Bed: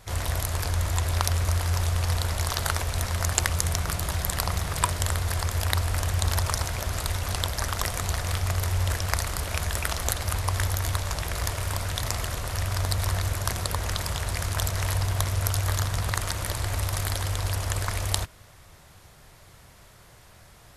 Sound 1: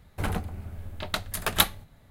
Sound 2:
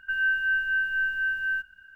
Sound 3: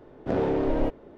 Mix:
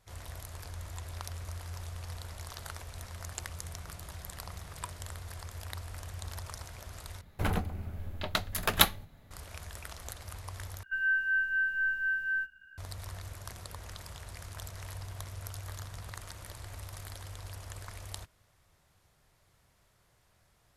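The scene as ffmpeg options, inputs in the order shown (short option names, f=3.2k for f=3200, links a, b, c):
-filter_complex "[0:a]volume=-16.5dB[a];[1:a]equalizer=f=8.7k:w=5.2:g=-8.5[b];[2:a]asplit=2[c][d];[d]adelay=15,volume=-4dB[e];[c][e]amix=inputs=2:normalize=0[f];[a]asplit=3[g][h][i];[g]atrim=end=7.214[j];[b]atrim=end=2.1,asetpts=PTS-STARTPTS,volume=-1dB[k];[h]atrim=start=9.306:end=10.834[l];[f]atrim=end=1.95,asetpts=PTS-STARTPTS,volume=-5.5dB[m];[i]atrim=start=12.776[n];[j][k]acrossfade=d=0.004:c1=hsin:c2=hsin[o];[o][l]acrossfade=d=0.004:c1=hsin:c2=hsin[p];[p][m]acrossfade=d=0.004:c1=hsin:c2=hsin[q];[q][n]acrossfade=d=0.004:c1=hsin:c2=hsin"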